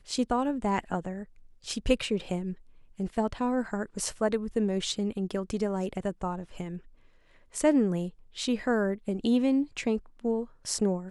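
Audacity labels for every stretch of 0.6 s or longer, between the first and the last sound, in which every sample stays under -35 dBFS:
6.770000	7.550000	silence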